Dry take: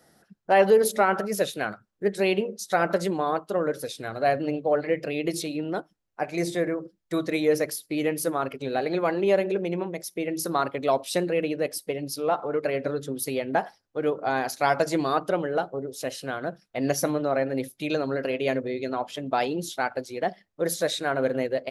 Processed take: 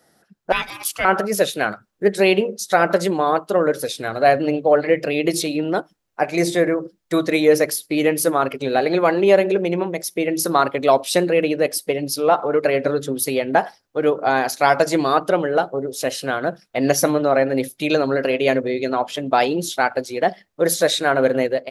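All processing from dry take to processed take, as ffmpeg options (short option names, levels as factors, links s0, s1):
-filter_complex "[0:a]asettb=1/sr,asplit=3[s0][s1][s2];[s0]atrim=end=0.524[s3];[s1]atrim=start=0.52:end=1.05,asetpts=PTS-STARTPTS,afade=t=in:d=0.004:c=qsin,afade=t=out:st=0.526:d=0.004:c=qsin,highpass=f=1100:w=0.5412,highpass=f=1100:w=1.3066,aeval=exprs='val(0)*sin(2*PI*750*n/s)':c=same[s4];[s2]atrim=start=1.046[s5];[s3][s4]acrossfade=d=0.004:c1=hsin:c2=qsin[s6];[s6][s5]acrossfade=d=0.004:c1=qsin:c2=hsin,lowshelf=f=180:g=-5.5,dynaudnorm=f=290:g=3:m=2.66,volume=1.12"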